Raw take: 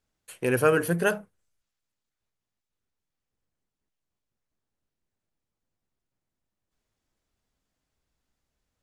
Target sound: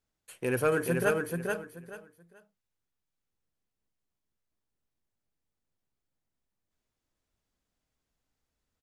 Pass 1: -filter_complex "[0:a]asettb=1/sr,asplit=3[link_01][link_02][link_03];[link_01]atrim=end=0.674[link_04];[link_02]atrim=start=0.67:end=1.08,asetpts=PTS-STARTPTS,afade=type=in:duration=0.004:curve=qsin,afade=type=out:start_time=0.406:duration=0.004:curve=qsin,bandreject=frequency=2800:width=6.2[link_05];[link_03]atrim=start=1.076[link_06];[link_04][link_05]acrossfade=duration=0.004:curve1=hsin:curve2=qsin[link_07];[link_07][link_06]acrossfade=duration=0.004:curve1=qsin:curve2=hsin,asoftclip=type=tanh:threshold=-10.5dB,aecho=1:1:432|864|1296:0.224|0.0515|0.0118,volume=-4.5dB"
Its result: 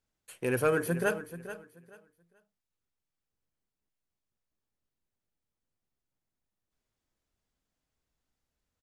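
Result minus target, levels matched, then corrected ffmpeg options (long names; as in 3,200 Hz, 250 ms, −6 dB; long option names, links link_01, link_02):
echo-to-direct −9.5 dB
-filter_complex "[0:a]asettb=1/sr,asplit=3[link_01][link_02][link_03];[link_01]atrim=end=0.674[link_04];[link_02]atrim=start=0.67:end=1.08,asetpts=PTS-STARTPTS,afade=type=in:duration=0.004:curve=qsin,afade=type=out:start_time=0.406:duration=0.004:curve=qsin,bandreject=frequency=2800:width=6.2[link_05];[link_03]atrim=start=1.076[link_06];[link_04][link_05]acrossfade=duration=0.004:curve1=hsin:curve2=qsin[link_07];[link_07][link_06]acrossfade=duration=0.004:curve1=qsin:curve2=hsin,asoftclip=type=tanh:threshold=-10.5dB,aecho=1:1:432|864|1296:0.668|0.154|0.0354,volume=-4.5dB"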